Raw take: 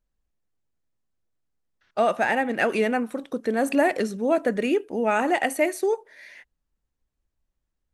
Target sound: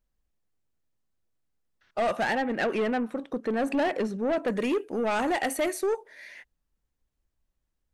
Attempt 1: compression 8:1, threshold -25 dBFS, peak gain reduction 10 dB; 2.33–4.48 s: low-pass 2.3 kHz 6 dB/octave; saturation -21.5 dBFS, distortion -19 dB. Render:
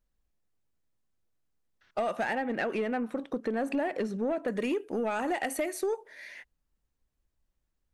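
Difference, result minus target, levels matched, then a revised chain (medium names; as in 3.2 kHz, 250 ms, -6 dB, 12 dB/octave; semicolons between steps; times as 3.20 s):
compression: peak gain reduction +10 dB
2.33–4.48 s: low-pass 2.3 kHz 6 dB/octave; saturation -21.5 dBFS, distortion -11 dB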